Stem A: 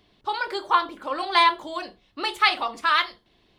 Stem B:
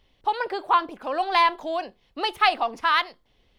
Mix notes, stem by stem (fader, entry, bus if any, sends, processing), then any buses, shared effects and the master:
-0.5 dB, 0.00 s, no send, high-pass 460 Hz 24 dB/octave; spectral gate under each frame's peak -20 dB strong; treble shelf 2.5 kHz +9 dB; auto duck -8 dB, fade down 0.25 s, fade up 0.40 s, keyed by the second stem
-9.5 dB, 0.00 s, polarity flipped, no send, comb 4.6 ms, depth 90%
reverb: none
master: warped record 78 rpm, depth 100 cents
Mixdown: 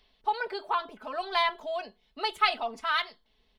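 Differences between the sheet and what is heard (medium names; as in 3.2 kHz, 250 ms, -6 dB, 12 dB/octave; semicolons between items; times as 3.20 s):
stem A -0.5 dB -> -7.0 dB; master: missing warped record 78 rpm, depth 100 cents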